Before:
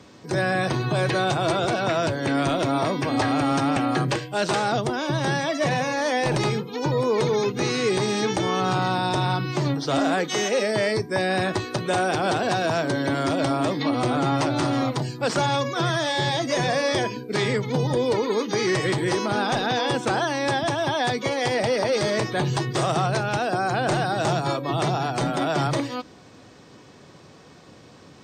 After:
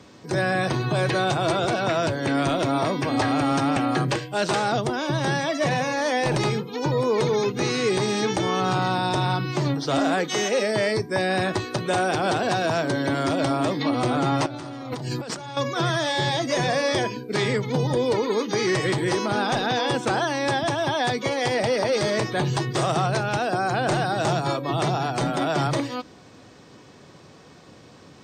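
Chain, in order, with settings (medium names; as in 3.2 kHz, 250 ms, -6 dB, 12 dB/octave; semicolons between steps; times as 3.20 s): 14.46–15.57 s: compressor with a negative ratio -33 dBFS, ratio -1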